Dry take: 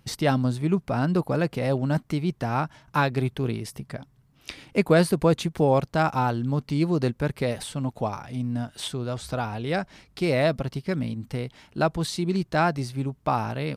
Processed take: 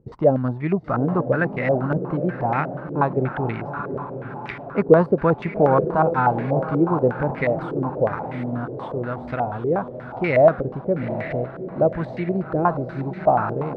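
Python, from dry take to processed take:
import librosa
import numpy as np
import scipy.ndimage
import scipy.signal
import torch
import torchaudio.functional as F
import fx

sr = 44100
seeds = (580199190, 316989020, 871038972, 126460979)

y = fx.echo_diffused(x, sr, ms=830, feedback_pct=53, wet_db=-9.5)
y = fx.filter_held_lowpass(y, sr, hz=8.3, low_hz=440.0, high_hz=2000.0)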